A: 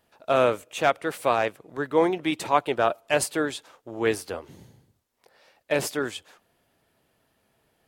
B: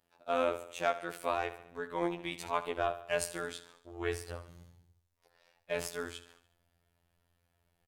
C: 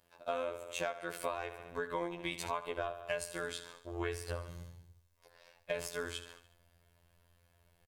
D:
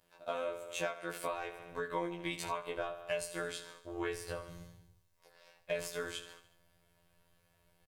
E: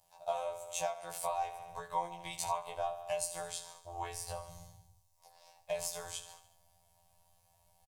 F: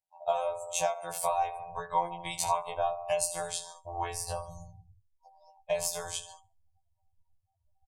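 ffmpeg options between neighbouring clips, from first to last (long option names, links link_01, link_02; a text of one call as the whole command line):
ffmpeg -i in.wav -af "aecho=1:1:72|144|216|288|360:0.2|0.106|0.056|0.0297|0.0157,afftfilt=real='hypot(re,im)*cos(PI*b)':imag='0':win_size=2048:overlap=0.75,asubboost=boost=6:cutoff=100,volume=-6.5dB" out.wav
ffmpeg -i in.wav -af "bandreject=frequency=460:width=12,aecho=1:1:1.9:0.32,acompressor=threshold=-39dB:ratio=12,volume=6dB" out.wav
ffmpeg -i in.wav -filter_complex "[0:a]asplit=2[link_01][link_02];[link_02]adelay=18,volume=-3.5dB[link_03];[link_01][link_03]amix=inputs=2:normalize=0,volume=-1.5dB" out.wav
ffmpeg -i in.wav -af "firequalizer=gain_entry='entry(150,0);entry(220,-26);entry(770,10);entry(1400,-12);entry(2200,-7);entry(6000,6);entry(9500,6);entry(15000,3)':delay=0.05:min_phase=1,volume=1dB" out.wav
ffmpeg -i in.wav -af "afftdn=noise_reduction=34:noise_floor=-55,volume=6.5dB" out.wav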